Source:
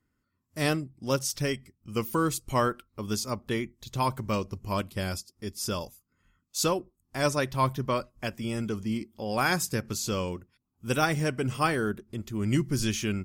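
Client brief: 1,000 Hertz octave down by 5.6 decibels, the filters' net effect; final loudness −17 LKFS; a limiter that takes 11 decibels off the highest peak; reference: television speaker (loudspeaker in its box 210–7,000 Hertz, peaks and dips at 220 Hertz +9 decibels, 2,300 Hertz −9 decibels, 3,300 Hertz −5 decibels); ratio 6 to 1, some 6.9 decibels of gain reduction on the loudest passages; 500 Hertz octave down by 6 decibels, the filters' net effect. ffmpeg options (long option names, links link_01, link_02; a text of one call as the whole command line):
ffmpeg -i in.wav -af "equalizer=frequency=500:width_type=o:gain=-6.5,equalizer=frequency=1000:width_type=o:gain=-5,acompressor=threshold=-30dB:ratio=6,alimiter=level_in=7dB:limit=-24dB:level=0:latency=1,volume=-7dB,highpass=frequency=210:width=0.5412,highpass=frequency=210:width=1.3066,equalizer=frequency=220:width_type=q:width=4:gain=9,equalizer=frequency=2300:width_type=q:width=4:gain=-9,equalizer=frequency=3300:width_type=q:width=4:gain=-5,lowpass=frequency=7000:width=0.5412,lowpass=frequency=7000:width=1.3066,volume=24.5dB" out.wav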